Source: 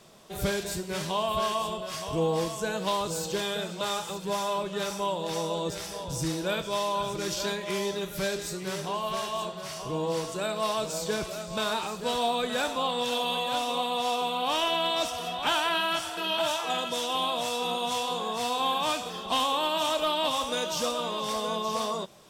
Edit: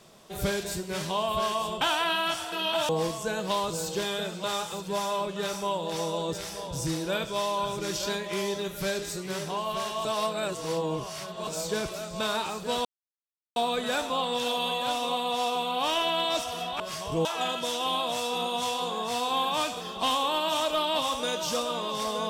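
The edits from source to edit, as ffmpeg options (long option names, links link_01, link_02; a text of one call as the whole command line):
ffmpeg -i in.wav -filter_complex "[0:a]asplit=8[link_01][link_02][link_03][link_04][link_05][link_06][link_07][link_08];[link_01]atrim=end=1.812[link_09];[link_02]atrim=start=15.458:end=16.542[link_10];[link_03]atrim=start=2.258:end=9.422[link_11];[link_04]atrim=start=9.418:end=10.842,asetpts=PTS-STARTPTS,areverse[link_12];[link_05]atrim=start=10.838:end=12.22,asetpts=PTS-STARTPTS,afade=type=out:start_time=1.378:duration=0.004:curve=hsin,apad=pad_dur=0.71[link_13];[link_06]atrim=start=12.22:end=15.462,asetpts=PTS-STARTPTS,afade=type=in:duration=0.004:curve=hsin[link_14];[link_07]atrim=start=1.808:end=2.262[link_15];[link_08]atrim=start=16.538[link_16];[link_09][link_10]acrossfade=duration=0.004:curve1=hsin:curve2=hsin[link_17];[link_17][link_11]acrossfade=duration=0.004:curve1=hsin:curve2=hsin[link_18];[link_18][link_12]acrossfade=duration=0.004:curve1=hsin:curve2=hsin[link_19];[link_13][link_14]concat=n=2:v=0:a=1[link_20];[link_19][link_20]acrossfade=duration=0.004:curve1=hsin:curve2=hsin[link_21];[link_21][link_15]acrossfade=duration=0.004:curve1=hsin:curve2=hsin[link_22];[link_22][link_16]acrossfade=duration=0.004:curve1=hsin:curve2=hsin" out.wav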